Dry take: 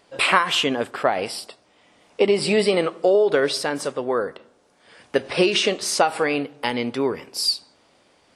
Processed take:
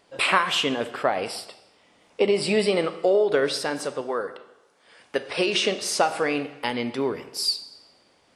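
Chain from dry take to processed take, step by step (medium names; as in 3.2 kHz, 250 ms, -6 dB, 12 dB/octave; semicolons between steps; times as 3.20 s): 4.01–5.48 s: bass shelf 290 Hz -8.5 dB; reverberation RT60 0.95 s, pre-delay 30 ms, DRR 12 dB; trim -3 dB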